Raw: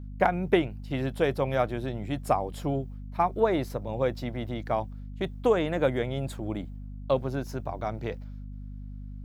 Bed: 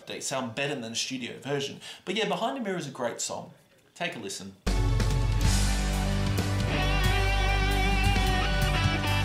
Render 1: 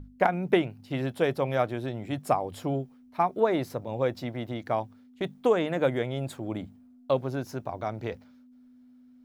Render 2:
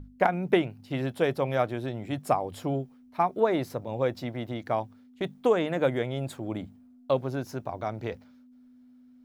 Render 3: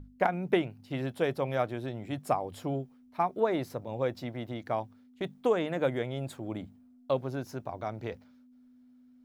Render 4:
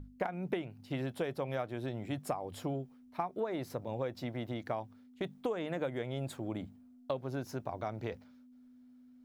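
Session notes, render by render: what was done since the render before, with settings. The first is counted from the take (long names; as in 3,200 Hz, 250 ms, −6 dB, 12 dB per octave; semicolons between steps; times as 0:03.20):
mains-hum notches 50/100/150/200 Hz
no processing that can be heard
level −3.5 dB
downward compressor 6 to 1, threshold −32 dBFS, peak gain reduction 11.5 dB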